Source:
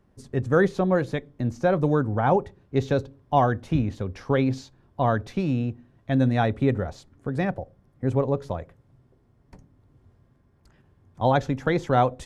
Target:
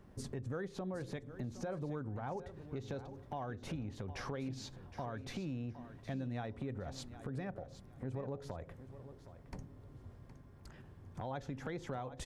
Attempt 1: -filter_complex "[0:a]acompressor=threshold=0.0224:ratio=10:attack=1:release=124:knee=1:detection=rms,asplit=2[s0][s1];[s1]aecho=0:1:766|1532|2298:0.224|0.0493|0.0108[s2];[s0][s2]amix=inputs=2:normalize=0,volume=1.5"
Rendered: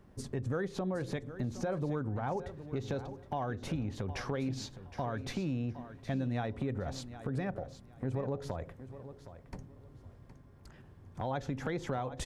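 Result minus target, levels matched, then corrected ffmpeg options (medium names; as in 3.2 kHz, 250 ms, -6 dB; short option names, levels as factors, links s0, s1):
compression: peak gain reduction -6.5 dB
-filter_complex "[0:a]acompressor=threshold=0.01:ratio=10:attack=1:release=124:knee=1:detection=rms,asplit=2[s0][s1];[s1]aecho=0:1:766|1532|2298:0.224|0.0493|0.0108[s2];[s0][s2]amix=inputs=2:normalize=0,volume=1.5"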